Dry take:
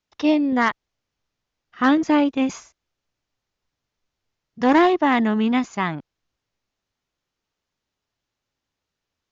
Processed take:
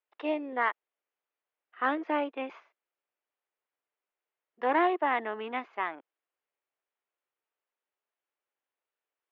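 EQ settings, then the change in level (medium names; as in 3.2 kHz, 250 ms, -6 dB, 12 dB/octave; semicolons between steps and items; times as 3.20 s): high-pass 390 Hz 24 dB/octave; low-pass 2.9 kHz 24 dB/octave; distance through air 64 m; -7.0 dB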